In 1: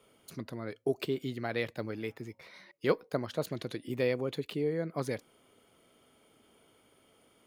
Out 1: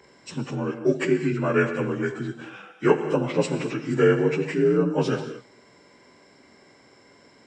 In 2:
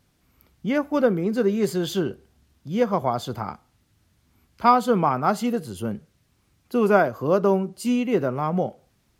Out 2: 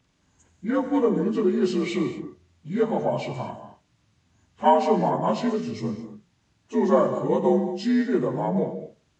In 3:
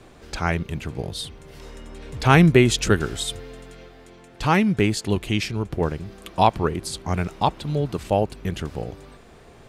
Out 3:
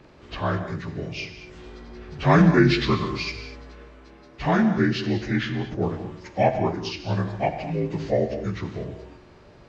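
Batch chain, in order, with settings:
partials spread apart or drawn together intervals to 84%
reverb whose tail is shaped and stops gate 260 ms flat, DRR 7.5 dB
loudness normalisation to −24 LKFS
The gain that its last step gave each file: +12.5, 0.0, −0.5 decibels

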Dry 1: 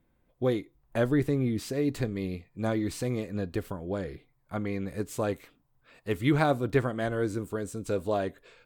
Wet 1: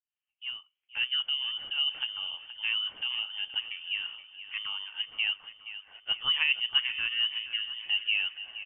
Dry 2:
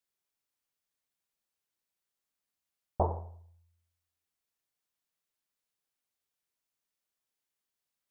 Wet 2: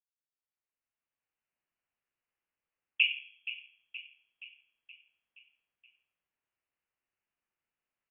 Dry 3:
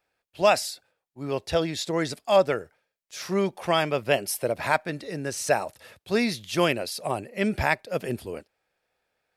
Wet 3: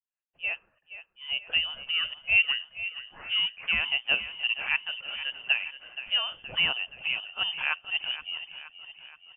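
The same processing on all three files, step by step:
fade in at the beginning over 1.59 s
high-pass filter 330 Hz 12 dB per octave
dynamic equaliser 420 Hz, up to +7 dB, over −37 dBFS, Q 0.75
in parallel at +0.5 dB: downward compressor, threshold −30 dBFS
on the sum: high-frequency loss of the air 170 metres
on a send: repeating echo 473 ms, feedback 56%, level −13 dB
on the sum: voice inversion scrambler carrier 3,300 Hz
normalise the peak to −12 dBFS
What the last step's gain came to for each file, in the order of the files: −7.0, −2.5, −8.5 decibels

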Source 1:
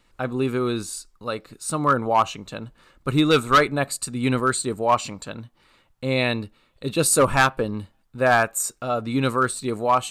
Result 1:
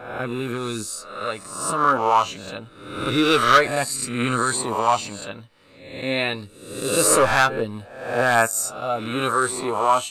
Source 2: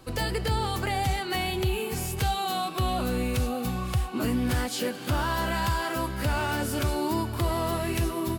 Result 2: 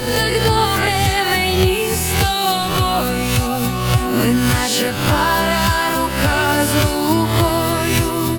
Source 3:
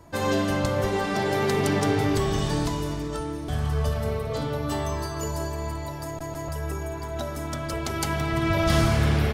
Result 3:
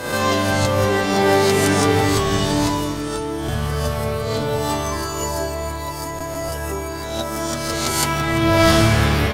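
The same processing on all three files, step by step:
peak hold with a rise ahead of every peak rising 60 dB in 0.82 s
low-shelf EQ 250 Hz −5 dB
flanger 0.25 Hz, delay 8.1 ms, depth 3.2 ms, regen +40%
normalise the peak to −2 dBFS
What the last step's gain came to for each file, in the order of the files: +2.5, +15.0, +11.0 decibels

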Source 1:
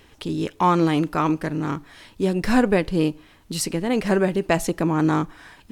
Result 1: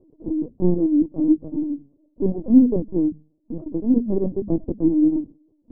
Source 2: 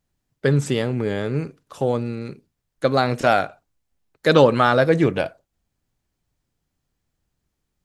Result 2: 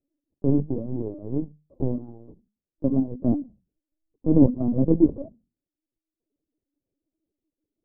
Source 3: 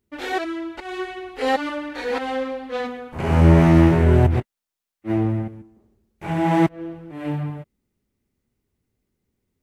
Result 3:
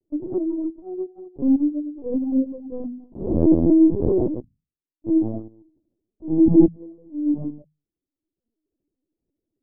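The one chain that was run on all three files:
spectral envelope flattened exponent 0.1
reverb reduction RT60 0.98 s
inverse Chebyshev low-pass filter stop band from 1,700 Hz, stop band 60 dB
parametric band 290 Hz +12 dB 0.66 octaves
mains-hum notches 50/100/150/200/250 Hz
linear-prediction vocoder at 8 kHz pitch kept
normalise the peak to −3 dBFS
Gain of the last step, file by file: +4.5, +2.5, +5.0 decibels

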